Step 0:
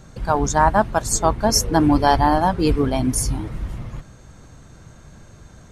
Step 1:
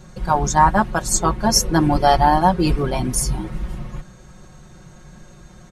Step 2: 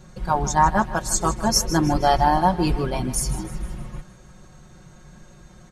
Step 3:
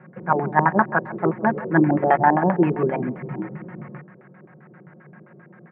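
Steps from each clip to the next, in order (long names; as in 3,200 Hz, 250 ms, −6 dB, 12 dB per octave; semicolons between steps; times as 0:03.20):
comb filter 5.5 ms, depth 89%; level −1 dB
feedback echo with a high-pass in the loop 156 ms, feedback 49%, level −14 dB; level −3.5 dB
auto-filter low-pass square 7.6 Hz 420–1,800 Hz; elliptic band-pass filter 150–2,300 Hz, stop band 40 dB; level +1.5 dB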